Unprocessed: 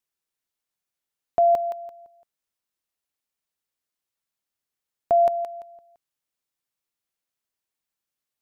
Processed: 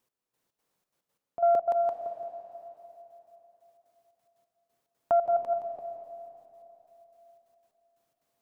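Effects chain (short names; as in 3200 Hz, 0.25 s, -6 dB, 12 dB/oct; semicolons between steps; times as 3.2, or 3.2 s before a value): graphic EQ 125/250/500/1000 Hz +8/+7/+9/+6 dB; limiter -22.5 dBFS, peak gain reduction 18.5 dB; step gate "x...xx.xxx.x." 179 bpm -12 dB; reverb RT60 3.6 s, pre-delay 0.11 s, DRR 7.5 dB; Doppler distortion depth 0.27 ms; gain +5 dB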